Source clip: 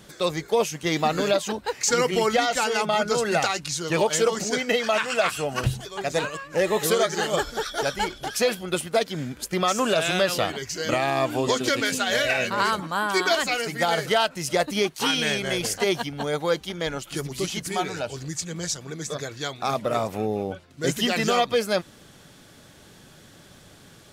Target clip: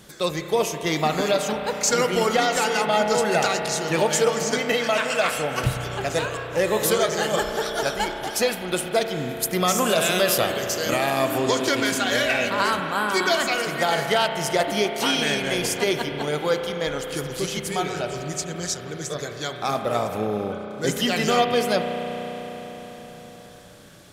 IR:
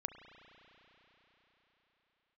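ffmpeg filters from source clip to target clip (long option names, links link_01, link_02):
-filter_complex "[0:a]asetnsamples=nb_out_samples=441:pad=0,asendcmd='9.29 equalizer g 15;11.38 equalizer g 2.5',equalizer=frequency=13000:width_type=o:width=0.97:gain=4.5[link_01];[1:a]atrim=start_sample=2205[link_02];[link_01][link_02]afir=irnorm=-1:irlink=0,volume=3dB"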